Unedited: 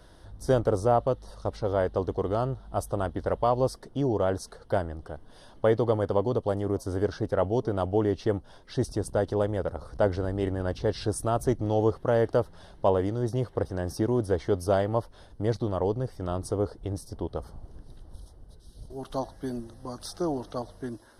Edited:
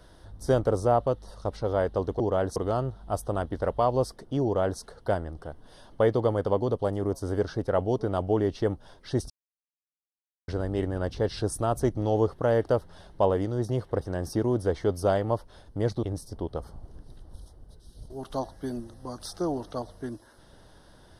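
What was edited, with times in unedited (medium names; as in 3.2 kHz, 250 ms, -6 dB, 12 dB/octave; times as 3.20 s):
4.08–4.44 s: copy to 2.20 s
8.94–10.12 s: mute
15.67–16.83 s: delete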